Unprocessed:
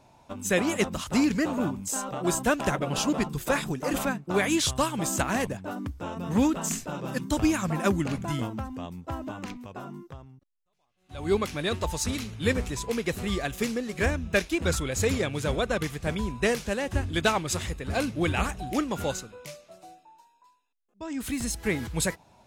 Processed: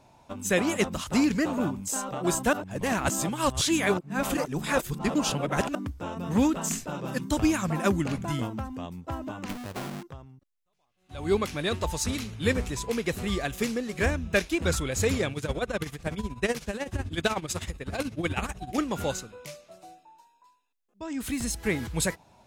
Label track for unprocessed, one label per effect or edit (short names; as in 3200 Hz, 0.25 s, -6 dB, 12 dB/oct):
2.530000	5.750000	reverse
9.490000	10.030000	half-waves squared off
15.320000	18.780000	tremolo 16 Hz, depth 77%